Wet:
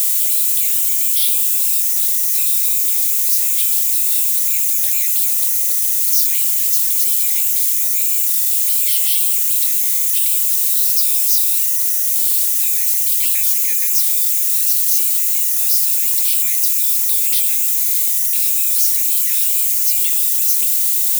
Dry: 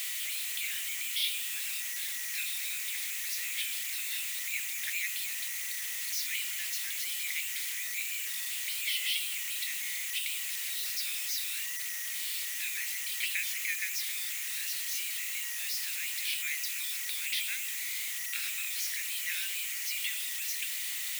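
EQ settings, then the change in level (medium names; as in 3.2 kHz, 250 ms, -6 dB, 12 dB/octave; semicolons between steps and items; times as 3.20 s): tone controls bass -2 dB, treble +9 dB; pre-emphasis filter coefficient 0.97; +8.5 dB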